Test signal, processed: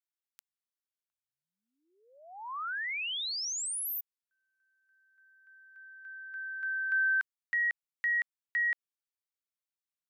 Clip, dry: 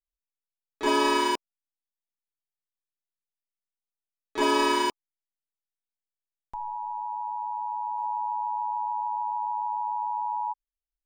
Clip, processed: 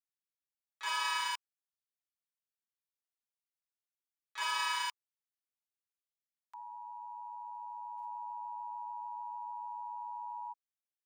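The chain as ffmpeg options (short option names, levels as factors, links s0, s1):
-af "highpass=f=1100:w=0.5412,highpass=f=1100:w=1.3066,volume=0.531"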